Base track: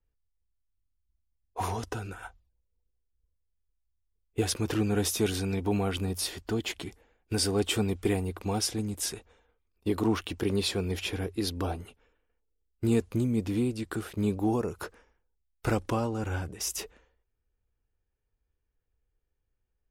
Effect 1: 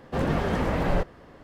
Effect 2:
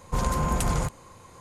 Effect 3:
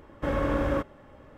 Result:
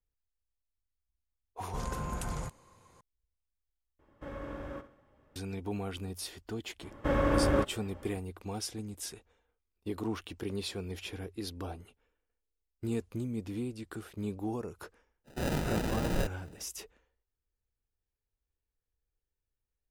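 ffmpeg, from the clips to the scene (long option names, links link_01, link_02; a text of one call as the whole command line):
ffmpeg -i bed.wav -i cue0.wav -i cue1.wav -i cue2.wav -filter_complex "[3:a]asplit=2[link_01][link_02];[0:a]volume=-8.5dB[link_03];[link_01]aecho=1:1:67|134|201|268:0.224|0.0985|0.0433|0.0191[link_04];[1:a]acrusher=samples=40:mix=1:aa=0.000001[link_05];[link_03]asplit=2[link_06][link_07];[link_06]atrim=end=3.994[link_08];[link_04]atrim=end=1.37,asetpts=PTS-STARTPTS,volume=-15dB[link_09];[link_07]atrim=start=5.356[link_10];[2:a]atrim=end=1.4,asetpts=PTS-STARTPTS,volume=-11.5dB,afade=type=in:duration=0.004:curve=hsin,afade=type=out:start_time=1.396:duration=0.004:curve=hsin,adelay=1610[link_11];[link_02]atrim=end=1.37,asetpts=PTS-STARTPTS,volume=-0.5dB,afade=type=in:duration=0.004:curve=hsin,afade=type=out:start_time=1.366:duration=0.004:curve=hsin,adelay=300762S[link_12];[link_05]atrim=end=1.43,asetpts=PTS-STARTPTS,volume=-7dB,afade=type=in:duration=0.05,afade=type=out:start_time=1.38:duration=0.05,adelay=672084S[link_13];[link_08][link_09]acrossfade=duration=0.004:curve1=hsin:curve2=hsin[link_14];[link_14][link_10]acrossfade=duration=0.004:curve1=hsin:curve2=hsin[link_15];[link_15][link_11][link_12][link_13]amix=inputs=4:normalize=0" out.wav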